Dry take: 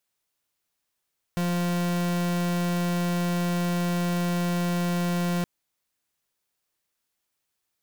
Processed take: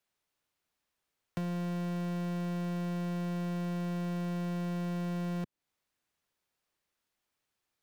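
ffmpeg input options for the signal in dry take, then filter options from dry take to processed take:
-f lavfi -i "aevalsrc='0.0531*(2*lt(mod(175*t,1),0.42)-1)':d=4.07:s=44100"
-filter_complex "[0:a]highshelf=f=5200:g=-9.5,acrossover=split=110|460[s0][s1][s2];[s0]acompressor=threshold=0.00251:ratio=4[s3];[s1]acompressor=threshold=0.0178:ratio=4[s4];[s2]acompressor=threshold=0.00501:ratio=4[s5];[s3][s4][s5]amix=inputs=3:normalize=0"

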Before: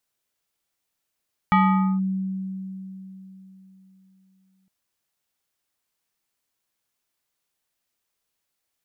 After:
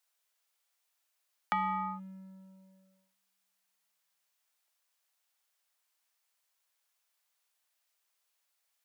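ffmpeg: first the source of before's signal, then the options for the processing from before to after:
-f lavfi -i "aevalsrc='0.224*pow(10,-3*t/3.76)*sin(2*PI*190*t+1.3*clip(1-t/0.48,0,1)*sin(2*PI*5.53*190*t))':d=3.16:s=44100"
-filter_complex "[0:a]highpass=f=340:w=0.5412,highpass=f=340:w=1.3066,acrossover=split=490[s0][s1];[s0]aeval=exprs='sgn(val(0))*max(abs(val(0))-0.00106,0)':c=same[s2];[s1]acompressor=threshold=0.0251:ratio=6[s3];[s2][s3]amix=inputs=2:normalize=0"

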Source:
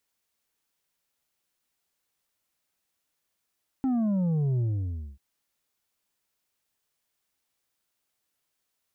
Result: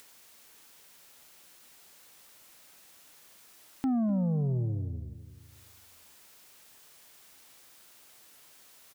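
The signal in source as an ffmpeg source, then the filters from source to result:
-f lavfi -i "aevalsrc='0.0668*clip((1.34-t)/0.59,0,1)*tanh(1.88*sin(2*PI*270*1.34/log(65/270)*(exp(log(65/270)*t/1.34)-1)))/tanh(1.88)':d=1.34:s=44100"
-filter_complex "[0:a]lowshelf=f=130:g=-7,acompressor=mode=upward:threshold=0.0141:ratio=2.5,asplit=2[s0][s1];[s1]adelay=252,lowpass=f=880:p=1,volume=0.251,asplit=2[s2][s3];[s3]adelay=252,lowpass=f=880:p=1,volume=0.42,asplit=2[s4][s5];[s5]adelay=252,lowpass=f=880:p=1,volume=0.42,asplit=2[s6][s7];[s7]adelay=252,lowpass=f=880:p=1,volume=0.42[s8];[s2][s4][s6][s8]amix=inputs=4:normalize=0[s9];[s0][s9]amix=inputs=2:normalize=0"

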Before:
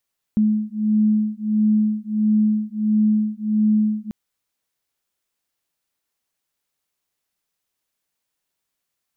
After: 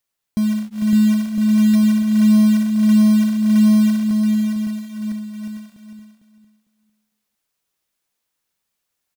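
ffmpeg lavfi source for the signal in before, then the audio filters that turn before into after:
-f lavfi -i "aevalsrc='0.112*(sin(2*PI*213*t)+sin(2*PI*214.5*t))':d=3.74:s=44100"
-filter_complex "[0:a]asplit=2[s0][s1];[s1]aecho=0:1:560|1008|1366|1653|1882:0.631|0.398|0.251|0.158|0.1[s2];[s0][s2]amix=inputs=2:normalize=0,acrusher=bits=4:mode=log:mix=0:aa=0.000001,asplit=2[s3][s4];[s4]aecho=0:1:452|904|1356:0.355|0.071|0.0142[s5];[s3][s5]amix=inputs=2:normalize=0"

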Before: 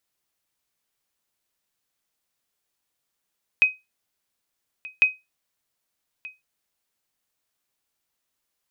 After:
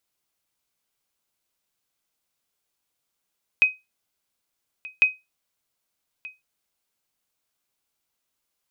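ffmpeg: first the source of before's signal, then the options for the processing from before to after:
-f lavfi -i "aevalsrc='0.376*(sin(2*PI*2520*mod(t,1.4))*exp(-6.91*mod(t,1.4)/0.21)+0.0891*sin(2*PI*2520*max(mod(t,1.4)-1.23,0))*exp(-6.91*max(mod(t,1.4)-1.23,0)/0.21))':d=2.8:s=44100"
-af "bandreject=f=1800:w=13"

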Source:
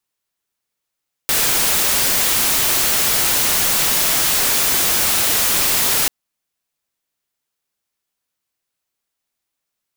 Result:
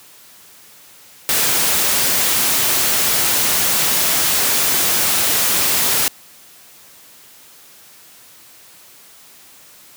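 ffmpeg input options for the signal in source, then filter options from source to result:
-f lavfi -i "anoisesrc=c=white:a=0.259:d=4.79:r=44100:seed=1"
-af "aeval=exprs='val(0)+0.5*0.0126*sgn(val(0))':c=same,highpass=81"

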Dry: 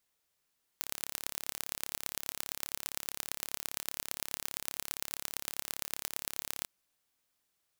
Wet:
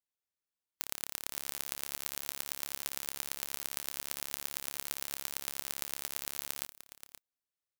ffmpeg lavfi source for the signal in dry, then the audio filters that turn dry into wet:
-f lavfi -i "aevalsrc='0.501*eq(mod(n,1256),0)*(0.5+0.5*eq(mod(n,5024),0))':d=5.85:s=44100"
-filter_complex "[0:a]asplit=2[s0][s1];[s1]aecho=0:1:528:0.316[s2];[s0][s2]amix=inputs=2:normalize=0,afftdn=nr=16:nf=-56"

